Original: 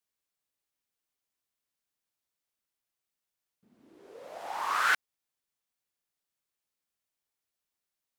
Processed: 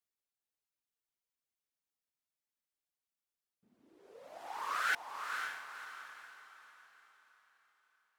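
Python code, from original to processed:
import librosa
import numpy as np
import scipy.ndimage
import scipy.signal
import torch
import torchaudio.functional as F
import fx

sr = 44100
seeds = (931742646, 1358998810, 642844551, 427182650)

y = fx.dereverb_blind(x, sr, rt60_s=1.7)
y = fx.echo_diffused(y, sr, ms=517, feedback_pct=41, wet_db=-5.0)
y = y * librosa.db_to_amplitude(-6.0)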